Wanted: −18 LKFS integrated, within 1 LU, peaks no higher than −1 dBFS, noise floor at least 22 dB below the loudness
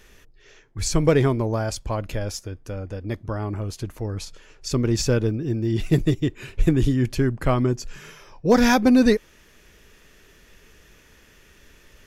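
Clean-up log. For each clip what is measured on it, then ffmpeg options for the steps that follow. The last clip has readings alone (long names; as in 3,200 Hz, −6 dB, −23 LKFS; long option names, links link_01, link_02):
integrated loudness −22.5 LKFS; sample peak −7.0 dBFS; target loudness −18.0 LKFS
→ -af "volume=4.5dB"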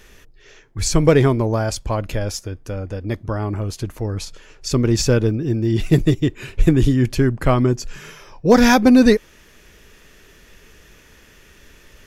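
integrated loudness −18.0 LKFS; sample peak −2.5 dBFS; background noise floor −49 dBFS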